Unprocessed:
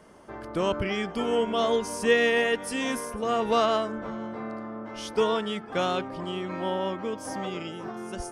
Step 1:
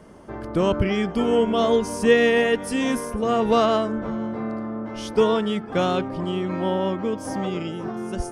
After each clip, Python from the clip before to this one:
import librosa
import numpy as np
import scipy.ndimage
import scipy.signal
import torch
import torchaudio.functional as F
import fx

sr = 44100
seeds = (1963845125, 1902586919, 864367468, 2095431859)

y = fx.low_shelf(x, sr, hz=420.0, db=9.0)
y = y * 10.0 ** (1.5 / 20.0)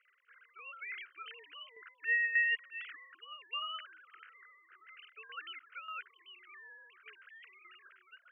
y = fx.sine_speech(x, sr)
y = scipy.signal.sosfilt(scipy.signal.ellip(3, 1.0, 40, [1400.0, 3000.0], 'bandpass', fs=sr, output='sos'), y)
y = fx.tremolo_shape(y, sr, shape='saw_down', hz=1.7, depth_pct=65)
y = y * 10.0 ** (-2.0 / 20.0)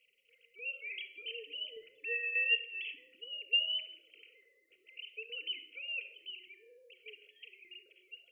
y = scipy.signal.sosfilt(scipy.signal.ellip(3, 1.0, 40, [580.0, 2600.0], 'bandstop', fs=sr, output='sos'), x)
y = fx.room_shoebox(y, sr, seeds[0], volume_m3=2600.0, walls='furnished', distance_m=1.7)
y = y * 10.0 ** (8.5 / 20.0)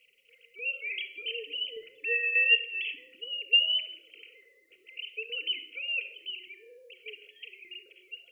y = fx.notch(x, sr, hz=610.0, q=15.0)
y = y * 10.0 ** (7.5 / 20.0)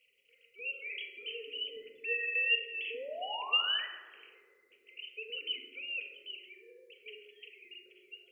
y = fx.dynamic_eq(x, sr, hz=220.0, q=0.89, threshold_db=-58.0, ratio=4.0, max_db=5)
y = fx.spec_paint(y, sr, seeds[1], shape='rise', start_s=2.9, length_s=0.96, low_hz=440.0, high_hz=2000.0, level_db=-36.0)
y = fx.rev_fdn(y, sr, rt60_s=1.5, lf_ratio=1.4, hf_ratio=0.3, size_ms=24.0, drr_db=2.0)
y = y * 10.0 ** (-6.5 / 20.0)